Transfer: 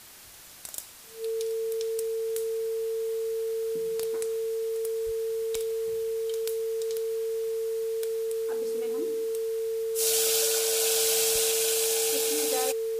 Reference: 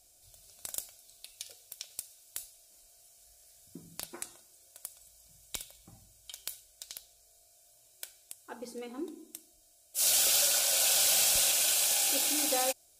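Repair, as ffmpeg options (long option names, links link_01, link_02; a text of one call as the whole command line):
ffmpeg -i in.wav -filter_complex "[0:a]bandreject=frequency=450:width=30,asplit=3[link_01][link_02][link_03];[link_01]afade=type=out:start_time=5.05:duration=0.02[link_04];[link_02]highpass=frequency=140:width=0.5412,highpass=frequency=140:width=1.3066,afade=type=in:start_time=5.05:duration=0.02,afade=type=out:start_time=5.17:duration=0.02[link_05];[link_03]afade=type=in:start_time=5.17:duration=0.02[link_06];[link_04][link_05][link_06]amix=inputs=3:normalize=0,afwtdn=0.004" out.wav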